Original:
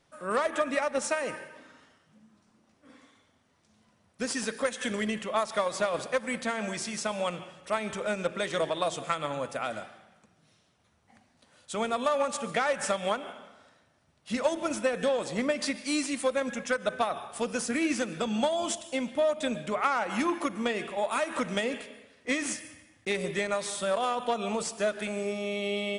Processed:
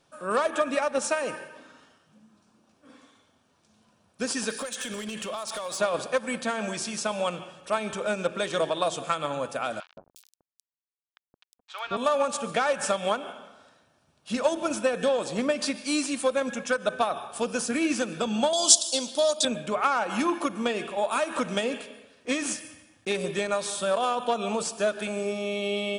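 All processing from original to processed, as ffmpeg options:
-filter_complex "[0:a]asettb=1/sr,asplit=3[s0][s1][s2];[s0]atrim=end=4.504[s3];[s1]atrim=start=4.5:end=5.81,asetpts=PTS-STARTPTS,afade=t=in:d=0.004:c=qsin,afade=t=out:st=1.306:d=0.004:c=qsin,highshelf=f=2700:g=9.5,acompressor=threshold=0.0282:ratio=8:attack=3.2:release=140:knee=1:detection=peak,volume=33.5,asoftclip=hard,volume=0.0299[s4];[s2]atrim=start=5.806[s5];[s3][s4]acrossfade=d=0.004:c1=hsin:c2=qsin[s6];[s6][s5]acrossfade=d=0.004:c1=qsin:c2=hsin,asettb=1/sr,asplit=3[s7][s8][s9];[s7]atrim=end=9.804[s10];[s8]atrim=start=9.8:end=11.97,asetpts=PTS-STARTPTS,afade=t=in:d=0.004:c=qsin,afade=t=out:st=2.166:d=0.004:c=qsin,acompressor=mode=upward:threshold=0.0126:ratio=2.5:attack=3.2:release=140:knee=2.83:detection=peak,aeval=exprs='val(0)*gte(abs(val(0)),0.0126)':c=same,acrossover=split=850|4400[s11][s12][s13];[s11]adelay=170[s14];[s13]adelay=360[s15];[s14][s12][s15]amix=inputs=3:normalize=0,atrim=end_sample=95697[s16];[s9]atrim=start=11.966[s17];[s10][s16]acrossfade=d=0.004:c1=hsin:c2=qsin[s18];[s18][s17]acrossfade=d=0.004:c1=qsin:c2=hsin,asettb=1/sr,asplit=3[s19][s20][s21];[s19]atrim=end=18.534[s22];[s20]atrim=start=18.53:end=19.45,asetpts=PTS-STARTPTS,afade=t=in:d=0.004:c=qsin,afade=t=out:st=0.916:d=0.004:c=qsin,highpass=310,highshelf=f=3200:t=q:w=3:g=12[s23];[s21]atrim=start=19.446[s24];[s22][s23]acrossfade=d=0.004:c1=hsin:c2=qsin[s25];[s25][s24]acrossfade=d=0.004:c1=qsin:c2=hsin,lowshelf=f=97:g=-7,bandreject=f=2000:w=5.2,volume=1.41"

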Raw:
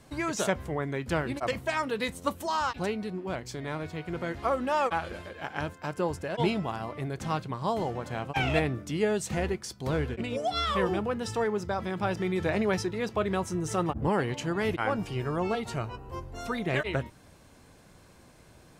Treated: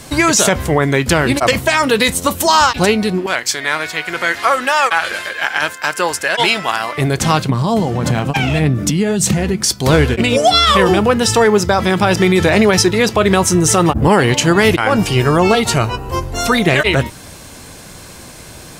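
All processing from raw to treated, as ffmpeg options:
-filter_complex "[0:a]asettb=1/sr,asplit=3[s0][s1][s2];[s0]atrim=end=3.264[s3];[s1]atrim=start=3.26:end=6.98,asetpts=PTS-STARTPTS,afade=t=in:d=0.004:c=qsin,afade=t=out:st=3.716:d=0.004:c=qsin,highpass=f=1100:p=1,equalizer=f=1700:w=1.7:g=6[s4];[s2]atrim=start=6.976[s5];[s3][s4]acrossfade=d=0.004:c1=hsin:c2=qsin[s6];[s6][s5]acrossfade=d=0.004:c1=qsin:c2=hsin,asettb=1/sr,asplit=3[s7][s8][s9];[s7]atrim=end=7.494[s10];[s8]atrim=start=7.49:end=9.66,asetpts=PTS-STARTPTS,afade=t=in:d=0.004:c=qsin,afade=t=out:st=2.166:d=0.004:c=qsin,equalizer=f=170:w=0.83:g=11,acompressor=threshold=0.0282:ratio=6:attack=3.2:release=140:knee=1:detection=peak,aphaser=in_gain=1:out_gain=1:delay=4.6:decay=0.27:speed=1.7:type=sinusoidal[s11];[s9]atrim=start=9.656[s12];[s10][s11]acrossfade=d=0.004:c1=hsin:c2=qsin[s13];[s13][s12]acrossfade=d=0.004:c1=qsin:c2=hsin,highshelf=f=2700:g=9.5,alimiter=level_in=8.91:limit=0.891:release=50:level=0:latency=1,volume=0.891"

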